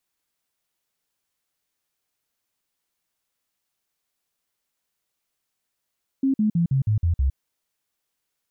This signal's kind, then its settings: stepped sine 269 Hz down, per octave 3, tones 7, 0.11 s, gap 0.05 s -17 dBFS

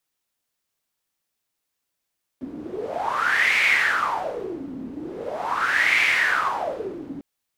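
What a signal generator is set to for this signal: wind-like swept noise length 4.80 s, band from 260 Hz, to 2200 Hz, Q 8.1, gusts 2, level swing 16 dB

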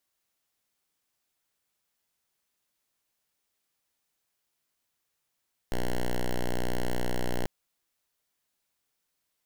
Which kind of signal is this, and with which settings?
pulse 61.1 Hz, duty 5% -26.5 dBFS 1.74 s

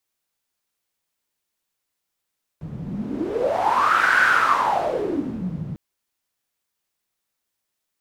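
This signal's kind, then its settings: wind-like swept noise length 3.15 s, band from 150 Hz, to 1500 Hz, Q 8.4, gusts 1, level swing 12 dB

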